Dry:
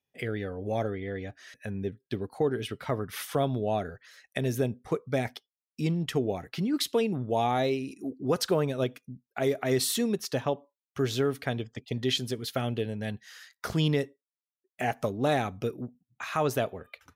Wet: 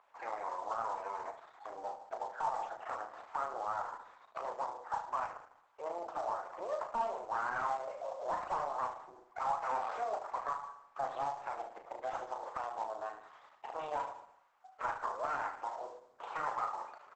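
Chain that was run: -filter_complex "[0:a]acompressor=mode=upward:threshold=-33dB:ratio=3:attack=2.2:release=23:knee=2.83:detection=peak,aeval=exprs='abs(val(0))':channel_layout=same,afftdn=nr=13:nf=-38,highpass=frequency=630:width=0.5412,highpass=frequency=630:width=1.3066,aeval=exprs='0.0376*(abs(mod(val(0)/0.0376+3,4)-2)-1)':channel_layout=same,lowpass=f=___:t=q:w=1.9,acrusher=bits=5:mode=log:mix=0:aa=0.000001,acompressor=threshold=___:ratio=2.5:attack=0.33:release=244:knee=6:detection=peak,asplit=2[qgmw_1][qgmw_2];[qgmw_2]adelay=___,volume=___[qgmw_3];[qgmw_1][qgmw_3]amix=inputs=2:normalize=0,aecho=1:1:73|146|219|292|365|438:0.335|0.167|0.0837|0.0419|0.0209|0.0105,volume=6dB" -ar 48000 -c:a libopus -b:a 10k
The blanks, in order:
1100, -40dB, 35, -5dB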